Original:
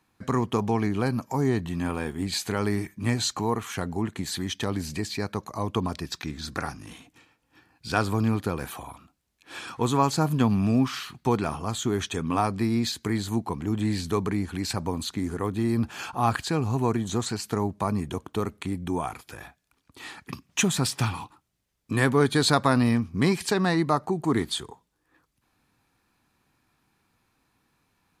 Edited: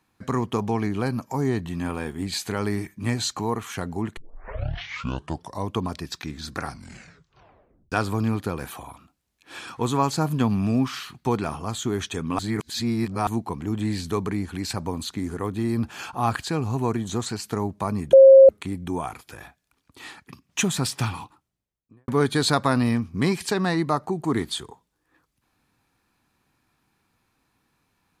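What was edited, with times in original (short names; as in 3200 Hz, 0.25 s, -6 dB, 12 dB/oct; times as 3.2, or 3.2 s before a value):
4.17 tape start 1.51 s
6.64 tape stop 1.28 s
12.39–13.27 reverse
18.13–18.49 bleep 537 Hz -6 dBFS
20.09–20.61 dip -9 dB, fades 0.26 s
21.16–22.08 studio fade out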